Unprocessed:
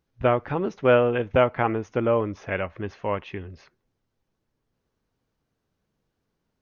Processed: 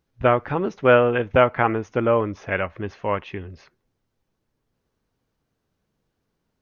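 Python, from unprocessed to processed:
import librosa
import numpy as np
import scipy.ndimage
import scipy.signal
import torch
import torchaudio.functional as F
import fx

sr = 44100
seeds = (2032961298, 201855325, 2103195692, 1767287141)

y = fx.dynamic_eq(x, sr, hz=1500.0, q=1.1, threshold_db=-33.0, ratio=4.0, max_db=4)
y = y * 10.0 ** (2.0 / 20.0)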